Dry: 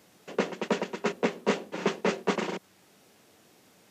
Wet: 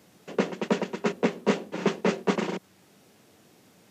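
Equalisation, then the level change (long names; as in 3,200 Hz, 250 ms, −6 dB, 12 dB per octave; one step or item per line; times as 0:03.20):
high-pass filter 82 Hz
low-shelf EQ 250 Hz +8 dB
0.0 dB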